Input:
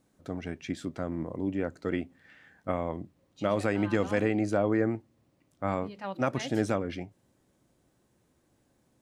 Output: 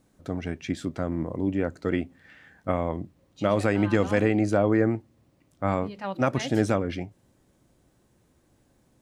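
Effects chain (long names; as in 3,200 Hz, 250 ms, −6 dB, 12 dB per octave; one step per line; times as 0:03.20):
low-shelf EQ 74 Hz +8 dB
level +4 dB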